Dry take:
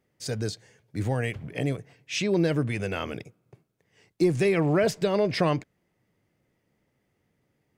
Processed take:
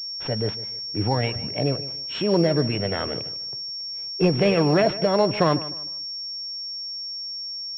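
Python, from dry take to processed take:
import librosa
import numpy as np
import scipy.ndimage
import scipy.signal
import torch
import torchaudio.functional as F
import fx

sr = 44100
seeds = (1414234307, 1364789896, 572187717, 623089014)

y = fx.formant_shift(x, sr, semitones=3)
y = fx.echo_feedback(y, sr, ms=152, feedback_pct=30, wet_db=-16)
y = fx.pwm(y, sr, carrier_hz=5500.0)
y = y * librosa.db_to_amplitude(4.0)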